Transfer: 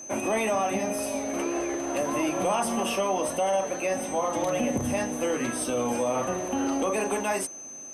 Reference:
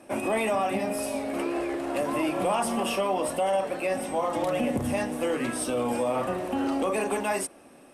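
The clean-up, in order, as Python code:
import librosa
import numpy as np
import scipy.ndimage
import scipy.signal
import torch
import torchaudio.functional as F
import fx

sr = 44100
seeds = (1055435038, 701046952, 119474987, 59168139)

y = fx.notch(x, sr, hz=6200.0, q=30.0)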